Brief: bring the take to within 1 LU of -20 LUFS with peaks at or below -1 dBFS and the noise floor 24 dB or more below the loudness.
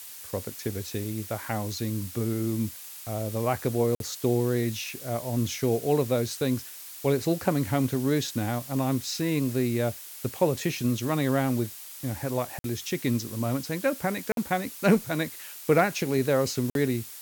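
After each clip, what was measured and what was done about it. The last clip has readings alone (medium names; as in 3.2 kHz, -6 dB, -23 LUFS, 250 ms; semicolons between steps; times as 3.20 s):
dropouts 4; longest dropout 52 ms; noise floor -43 dBFS; noise floor target -52 dBFS; loudness -28.0 LUFS; peak level -9.5 dBFS; loudness target -20.0 LUFS
-> interpolate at 3.95/12.59/14.32/16.70 s, 52 ms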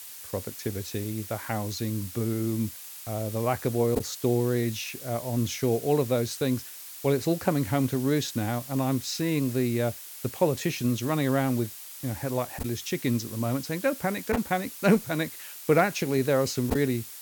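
dropouts 0; noise floor -43 dBFS; noise floor target -52 dBFS
-> noise reduction 9 dB, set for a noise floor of -43 dBFS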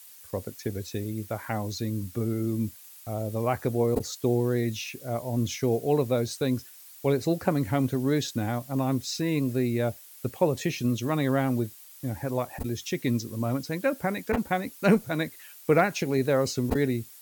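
noise floor -49 dBFS; noise floor target -52 dBFS
-> noise reduction 6 dB, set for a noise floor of -49 dBFS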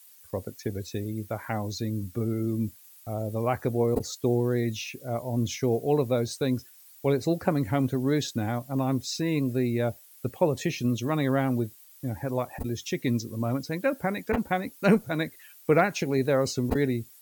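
noise floor -53 dBFS; loudness -28.0 LUFS; peak level -9.5 dBFS; loudness target -20.0 LUFS
-> trim +8 dB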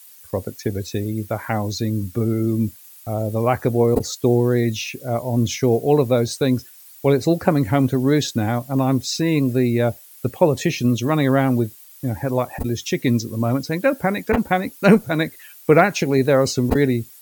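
loudness -20.0 LUFS; peak level -1.5 dBFS; noise floor -45 dBFS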